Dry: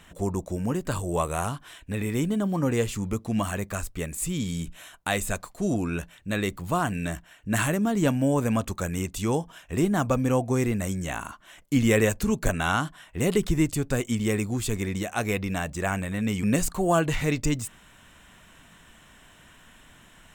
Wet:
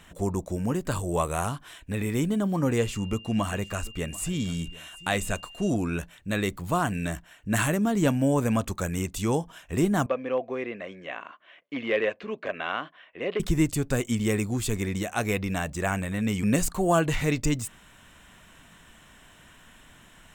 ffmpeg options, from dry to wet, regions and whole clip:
-filter_complex "[0:a]asettb=1/sr,asplit=3[a][b][c];[a]atrim=end=2.784[d];[b]atrim=start=2.78:end=5.7,asetpts=PTS-STARTPTS,afade=t=in:d=0.004:c=qsin,afade=t=out:st=2.916:d=0.004:c=qsin,highshelf=f=11k:g=-8.5,aeval=exprs='val(0)+0.00562*sin(2*PI*2800*n/s)':c=same,aecho=1:1:741:0.1,atrim=end_sample=128772[e];[c]atrim=start=5.696[f];[d][e]acrossfade=d=0.004:c1=hsin:c2=qsin[g];[g][f]acrossfade=d=0.004:c1=qsin:c2=hsin,asettb=1/sr,asplit=3[h][i][j];[h]atrim=end=10.064[k];[i]atrim=start=10.06:end=13.4,asetpts=PTS-STARTPTS,afade=t=in:d=0.004:c=qsin,afade=t=out:st=3.336:d=0.004:c=qsin,aeval=exprs='0.211*(abs(mod(val(0)/0.211+3,4)-2)-1)':c=same,highpass=480,equalizer=f=530:t=q:w=4:g=3,equalizer=f=860:t=q:w=4:g=-9,equalizer=f=1.4k:t=q:w=4:g=-6,lowpass=f=3k:w=0.5412,lowpass=f=3k:w=1.3066[l];[j]atrim=start=13.396[m];[k][l]acrossfade=d=0.004:c1=hsin:c2=qsin[n];[n][m]acrossfade=d=0.004:c1=qsin:c2=hsin"

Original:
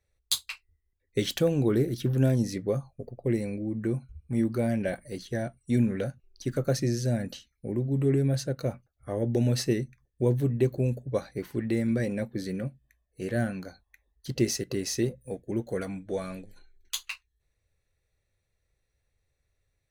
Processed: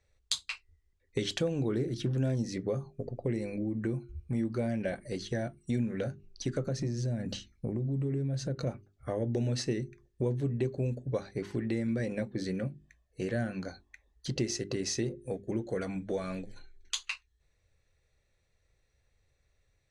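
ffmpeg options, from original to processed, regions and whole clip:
-filter_complex "[0:a]asettb=1/sr,asplit=3[a][b][c];[a]atrim=end=6.634[d];[b]atrim=start=6.63:end=8.67,asetpts=PTS-STARTPTS,afade=t=in:d=0.004:c=qsin,afade=t=out:st=2.036:d=0.004:c=qsin,lowshelf=f=370:g=7.5,acompressor=threshold=-31dB:ratio=2.5:attack=3.2:release=140:knee=1:detection=peak[e];[c]atrim=start=8.666[f];[d][e]acrossfade=d=0.004:c1=hsin:c2=qsin[g];[g][f]acrossfade=d=0.004:c1=qsin:c2=hsin,lowpass=f=8.2k:w=0.5412,lowpass=f=8.2k:w=1.3066,bandreject=f=50:t=h:w=6,bandreject=f=100:t=h:w=6,bandreject=f=150:t=h:w=6,bandreject=f=200:t=h:w=6,bandreject=f=250:t=h:w=6,bandreject=f=300:t=h:w=6,bandreject=f=350:t=h:w=6,bandreject=f=400:t=h:w=6,acompressor=threshold=-37dB:ratio=2.5,volume=4.5dB"

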